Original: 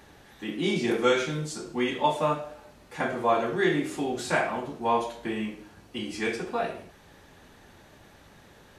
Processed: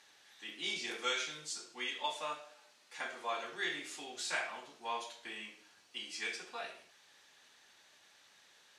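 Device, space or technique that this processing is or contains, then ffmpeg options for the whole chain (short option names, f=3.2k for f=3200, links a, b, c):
piezo pickup straight into a mixer: -filter_complex "[0:a]asettb=1/sr,asplit=3[a][b][c];[a]atrim=end=1.584[d];[b]atrim=start=1.58:end=3.44,asetpts=PTS-STARTPTS,afade=t=in:d=0.004:c=qsin,afade=t=out:st=1.856:d=0.004:c=qsin,highpass=160[e];[c]atrim=start=3.436[f];[d][e]acrossfade=d=0.004:c1=hsin:c2=qsin[g];[g][f]acrossfade=d=0.004:c1=qsin:c2=hsin,lowpass=5.4k,aderivative,volume=4dB"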